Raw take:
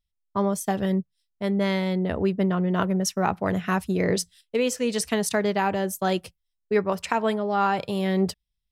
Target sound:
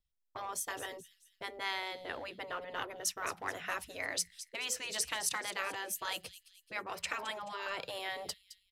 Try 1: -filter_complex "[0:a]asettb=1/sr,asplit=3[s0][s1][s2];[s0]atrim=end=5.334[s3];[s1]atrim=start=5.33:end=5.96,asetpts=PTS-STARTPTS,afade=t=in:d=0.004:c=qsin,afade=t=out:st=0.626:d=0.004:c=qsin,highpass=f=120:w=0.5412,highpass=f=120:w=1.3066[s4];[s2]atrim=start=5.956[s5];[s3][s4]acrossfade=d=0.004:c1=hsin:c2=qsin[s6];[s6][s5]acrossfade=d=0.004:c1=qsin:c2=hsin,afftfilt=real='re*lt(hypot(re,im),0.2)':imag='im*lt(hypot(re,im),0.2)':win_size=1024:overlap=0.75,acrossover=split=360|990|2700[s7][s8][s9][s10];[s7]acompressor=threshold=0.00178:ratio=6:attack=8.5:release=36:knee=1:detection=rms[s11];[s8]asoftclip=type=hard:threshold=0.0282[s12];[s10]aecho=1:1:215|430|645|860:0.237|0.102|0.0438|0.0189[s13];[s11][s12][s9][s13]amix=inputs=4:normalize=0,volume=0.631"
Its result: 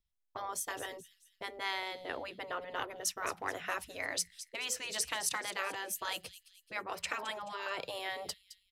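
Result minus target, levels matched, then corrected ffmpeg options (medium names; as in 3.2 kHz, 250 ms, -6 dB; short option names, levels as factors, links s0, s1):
hard clipper: distortion -9 dB
-filter_complex "[0:a]asettb=1/sr,asplit=3[s0][s1][s2];[s0]atrim=end=5.334[s3];[s1]atrim=start=5.33:end=5.96,asetpts=PTS-STARTPTS,afade=t=in:d=0.004:c=qsin,afade=t=out:st=0.626:d=0.004:c=qsin,highpass=f=120:w=0.5412,highpass=f=120:w=1.3066[s4];[s2]atrim=start=5.956[s5];[s3][s4]acrossfade=d=0.004:c1=hsin:c2=qsin[s6];[s6][s5]acrossfade=d=0.004:c1=qsin:c2=hsin,afftfilt=real='re*lt(hypot(re,im),0.2)':imag='im*lt(hypot(re,im),0.2)':win_size=1024:overlap=0.75,acrossover=split=360|990|2700[s7][s8][s9][s10];[s7]acompressor=threshold=0.00178:ratio=6:attack=8.5:release=36:knee=1:detection=rms[s11];[s8]asoftclip=type=hard:threshold=0.0126[s12];[s10]aecho=1:1:215|430|645|860:0.237|0.102|0.0438|0.0189[s13];[s11][s12][s9][s13]amix=inputs=4:normalize=0,volume=0.631"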